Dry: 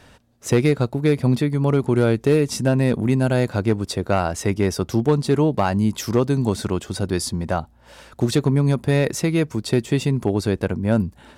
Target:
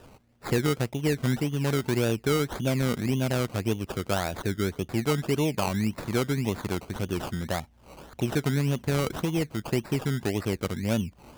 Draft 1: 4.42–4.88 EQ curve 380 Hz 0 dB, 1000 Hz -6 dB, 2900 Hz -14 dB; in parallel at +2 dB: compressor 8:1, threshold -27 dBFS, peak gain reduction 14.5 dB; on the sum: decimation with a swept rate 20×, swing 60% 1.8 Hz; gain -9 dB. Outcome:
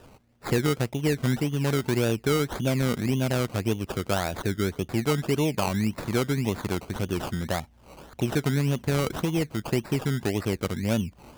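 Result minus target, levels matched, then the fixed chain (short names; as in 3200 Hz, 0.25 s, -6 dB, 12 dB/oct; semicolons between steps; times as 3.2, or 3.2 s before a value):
compressor: peak gain reduction -5.5 dB
4.42–4.88 EQ curve 380 Hz 0 dB, 1000 Hz -6 dB, 2900 Hz -14 dB; in parallel at +2 dB: compressor 8:1, threshold -33.5 dBFS, peak gain reduction 20 dB; on the sum: decimation with a swept rate 20×, swing 60% 1.8 Hz; gain -9 dB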